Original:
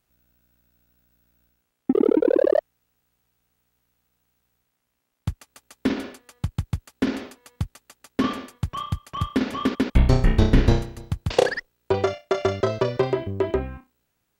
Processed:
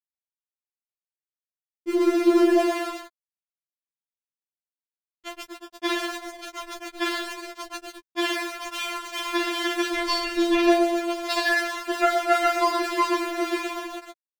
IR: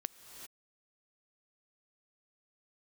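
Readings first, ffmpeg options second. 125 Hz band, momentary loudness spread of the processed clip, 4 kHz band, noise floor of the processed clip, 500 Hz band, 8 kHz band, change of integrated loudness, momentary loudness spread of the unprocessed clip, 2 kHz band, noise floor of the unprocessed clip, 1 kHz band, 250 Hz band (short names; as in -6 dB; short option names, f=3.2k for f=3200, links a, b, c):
under -40 dB, 17 LU, +7.0 dB, under -85 dBFS, -2.0 dB, +7.5 dB, +0.5 dB, 15 LU, +7.0 dB, -76 dBFS, +6.0 dB, +0.5 dB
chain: -filter_complex "[0:a]lowpass=7.7k,asplit=2[a][b];[b]adelay=120,lowpass=f=880:p=1,volume=-5dB,asplit=2[c][d];[d]adelay=120,lowpass=f=880:p=1,volume=0.51,asplit=2[e][f];[f]adelay=120,lowpass=f=880:p=1,volume=0.51,asplit=2[g][h];[h]adelay=120,lowpass=f=880:p=1,volume=0.51,asplit=2[i][j];[j]adelay=120,lowpass=f=880:p=1,volume=0.51,asplit=2[k][l];[l]adelay=120,lowpass=f=880:p=1,volume=0.51[m];[a][c][e][g][i][k][m]amix=inputs=7:normalize=0,aeval=exprs='val(0)+0.0141*(sin(2*PI*50*n/s)+sin(2*PI*2*50*n/s)/2+sin(2*PI*3*50*n/s)/3+sin(2*PI*4*50*n/s)/4+sin(2*PI*5*50*n/s)/5)':c=same,asplit=2[n][o];[1:a]atrim=start_sample=2205,adelay=28[p];[o][p]afir=irnorm=-1:irlink=0,volume=-6.5dB[q];[n][q]amix=inputs=2:normalize=0,aeval=exprs='val(0)*gte(abs(val(0)),0.0376)':c=same,asplit=2[r][s];[s]highpass=f=720:p=1,volume=17dB,asoftclip=type=tanh:threshold=-2dB[t];[r][t]amix=inputs=2:normalize=0,lowpass=f=5k:p=1,volume=-6dB,afftfilt=real='re*4*eq(mod(b,16),0)':imag='im*4*eq(mod(b,16),0)':win_size=2048:overlap=0.75,volume=-2dB"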